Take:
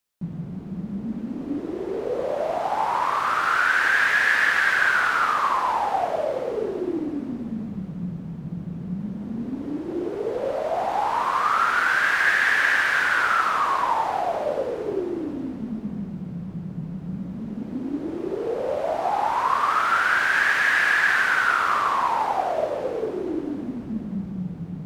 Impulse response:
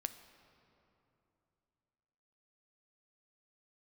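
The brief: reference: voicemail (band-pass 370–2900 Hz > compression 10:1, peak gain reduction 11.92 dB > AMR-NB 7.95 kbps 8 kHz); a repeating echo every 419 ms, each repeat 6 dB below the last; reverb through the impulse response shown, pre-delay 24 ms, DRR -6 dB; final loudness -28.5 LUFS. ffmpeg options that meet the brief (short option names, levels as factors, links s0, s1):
-filter_complex "[0:a]aecho=1:1:419|838|1257|1676|2095|2514:0.501|0.251|0.125|0.0626|0.0313|0.0157,asplit=2[s0][s1];[1:a]atrim=start_sample=2205,adelay=24[s2];[s1][s2]afir=irnorm=-1:irlink=0,volume=2.37[s3];[s0][s3]amix=inputs=2:normalize=0,highpass=370,lowpass=2900,acompressor=threshold=0.112:ratio=10,volume=0.596" -ar 8000 -c:a libopencore_amrnb -b:a 7950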